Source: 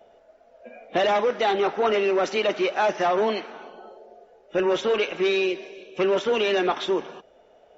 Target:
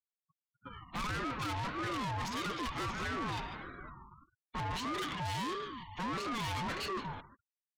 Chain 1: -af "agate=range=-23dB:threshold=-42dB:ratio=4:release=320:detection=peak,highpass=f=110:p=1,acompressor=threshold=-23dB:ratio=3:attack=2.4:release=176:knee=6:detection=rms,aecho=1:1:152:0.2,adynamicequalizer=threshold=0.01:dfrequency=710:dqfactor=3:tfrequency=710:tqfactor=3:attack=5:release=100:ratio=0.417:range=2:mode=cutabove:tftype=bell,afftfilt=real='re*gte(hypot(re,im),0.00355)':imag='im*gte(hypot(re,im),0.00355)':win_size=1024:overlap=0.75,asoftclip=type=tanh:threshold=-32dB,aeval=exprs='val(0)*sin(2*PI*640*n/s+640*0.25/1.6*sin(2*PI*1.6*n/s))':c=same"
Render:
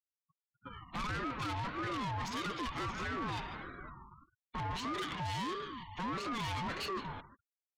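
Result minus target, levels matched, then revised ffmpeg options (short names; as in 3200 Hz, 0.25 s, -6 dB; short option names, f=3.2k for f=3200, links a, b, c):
compressor: peak gain reduction +6 dB
-af "agate=range=-23dB:threshold=-42dB:ratio=4:release=320:detection=peak,highpass=f=110:p=1,aecho=1:1:152:0.2,adynamicequalizer=threshold=0.01:dfrequency=710:dqfactor=3:tfrequency=710:tqfactor=3:attack=5:release=100:ratio=0.417:range=2:mode=cutabove:tftype=bell,afftfilt=real='re*gte(hypot(re,im),0.00355)':imag='im*gte(hypot(re,im),0.00355)':win_size=1024:overlap=0.75,asoftclip=type=tanh:threshold=-32dB,aeval=exprs='val(0)*sin(2*PI*640*n/s+640*0.25/1.6*sin(2*PI*1.6*n/s))':c=same"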